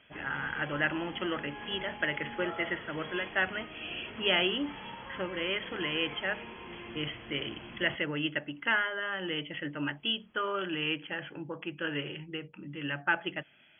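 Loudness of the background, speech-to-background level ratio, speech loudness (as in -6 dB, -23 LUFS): -44.0 LUFS, 11.0 dB, -33.0 LUFS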